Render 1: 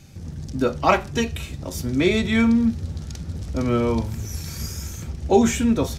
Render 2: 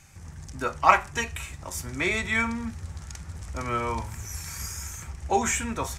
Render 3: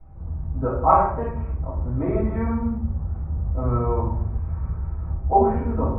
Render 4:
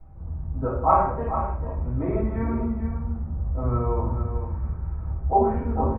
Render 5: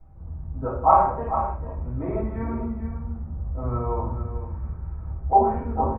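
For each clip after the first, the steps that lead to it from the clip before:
graphic EQ 125/250/500/1000/2000/4000/8000 Hz -4/-9/-5/+8/+7/-6/+9 dB; trim -5 dB
low-pass 1 kHz 24 dB/octave; reverberation RT60 0.70 s, pre-delay 3 ms, DRR -15 dB; trim -11.5 dB
reverse; upward compressor, threshold -34 dBFS; reverse; delay 444 ms -9 dB; trim -2.5 dB
dynamic bell 830 Hz, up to +7 dB, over -35 dBFS, Q 1.3; trim -3 dB

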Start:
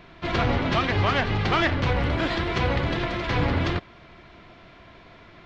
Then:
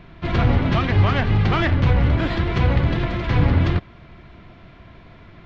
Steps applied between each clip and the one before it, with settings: tone controls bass +9 dB, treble -5 dB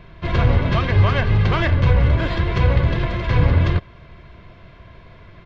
comb 1.9 ms, depth 42%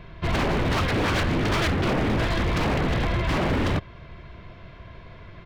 wavefolder -18 dBFS

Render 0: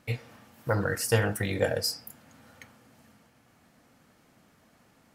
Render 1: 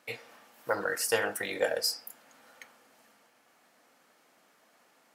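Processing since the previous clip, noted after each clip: high-pass 440 Hz 12 dB/octave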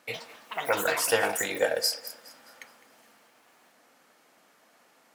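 ever faster or slower copies 83 ms, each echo +6 st, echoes 2, each echo -6 dB; thinning echo 208 ms, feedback 43%, high-pass 420 Hz, level -17.5 dB; trim +3 dB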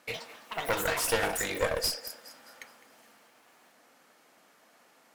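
one-sided clip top -33 dBFS

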